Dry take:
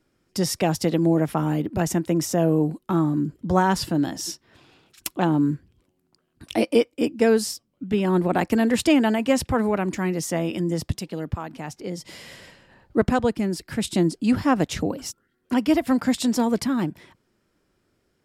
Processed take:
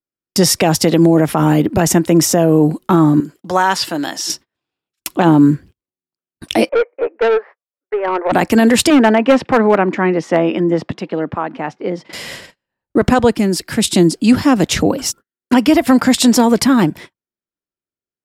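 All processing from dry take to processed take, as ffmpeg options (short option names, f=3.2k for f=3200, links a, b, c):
-filter_complex "[0:a]asettb=1/sr,asplit=3[a][b][c];[a]atrim=end=3.204[d];[b]atrim=start=3.2:end=4.3,asetpts=PTS-STARTPTS,afade=t=in:d=0.004:c=qsin,afade=t=out:st=1.096:d=0.004:c=qsin,acrossover=split=5200[e][f];[f]acompressor=threshold=-41dB:ratio=4:attack=1:release=60[g];[e][g]amix=inputs=2:normalize=0,highpass=f=1k:p=1[h];[c]atrim=start=4.296[i];[d][h]acrossfade=d=0.004:c1=hsin:c2=qsin[j];[j][i]acrossfade=d=0.004:c1=qsin:c2=hsin,asettb=1/sr,asplit=3[k][l][m];[k]atrim=end=6.694[n];[l]atrim=start=6.69:end=8.32,asetpts=PTS-STARTPTS,afade=t=in:d=0.004:c=qsin,afade=t=out:st=1.626:d=0.004:c=qsin,asuperpass=centerf=920:order=12:qfactor=0.57,aeval=exprs='(tanh(14.1*val(0)+0.15)-tanh(0.15))/14.1':c=same[o];[m]atrim=start=8.316[p];[n][o]acrossfade=d=0.004:c1=hsin:c2=qsin[q];[q][p]acrossfade=d=0.004:c1=qsin:c2=hsin,asettb=1/sr,asplit=3[r][s][t];[r]atrim=end=8.904[u];[s]atrim=start=8.9:end=12.13,asetpts=PTS-STARTPTS,afade=t=in:d=0.004:c=qsin,afade=t=out:st=3.226:d=0.004:c=qsin,highpass=220,lowpass=2.1k,asoftclip=type=hard:threshold=-16dB[v];[t]atrim=start=12.126[w];[u][v]acrossfade=d=0.004:c1=hsin:c2=qsin[x];[x][w]acrossfade=d=0.004:c1=qsin:c2=hsin,asettb=1/sr,asplit=3[y][z][aa];[y]atrim=end=13.364[ab];[z]atrim=start=13.36:end=14.64,asetpts=PTS-STARTPTS,afade=t=in:d=0.004:c=qsin,afade=t=out:st=1.276:d=0.004:c=qsin,lowshelf=f=130:g=-6,acrossover=split=400|3000[ac][ad][ae];[ad]acompressor=threshold=-44dB:ratio=1.5:attack=3.2:release=140:knee=2.83:detection=peak[af];[ac][af][ae]amix=inputs=3:normalize=0[ag];[aa]atrim=start=14.636[ah];[ab][ag]acrossfade=d=0.004:c1=hsin:c2=qsin[ai];[ai][ah]acrossfade=d=0.004:c1=qsin:c2=hsin,agate=range=-40dB:threshold=-44dB:ratio=16:detection=peak,lowshelf=f=230:g=-5,alimiter=level_in=15dB:limit=-1dB:release=50:level=0:latency=1,volume=-1dB"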